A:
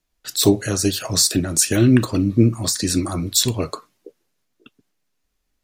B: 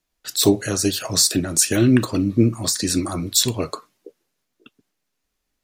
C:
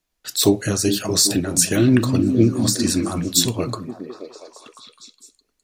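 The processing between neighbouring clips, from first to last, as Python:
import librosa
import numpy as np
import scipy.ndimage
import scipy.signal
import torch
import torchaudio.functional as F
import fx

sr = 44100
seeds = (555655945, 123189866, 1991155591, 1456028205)

y1 = fx.low_shelf(x, sr, hz=110.0, db=-6.5)
y2 = fx.echo_stepped(y1, sr, ms=207, hz=160.0, octaves=0.7, feedback_pct=70, wet_db=-2.0)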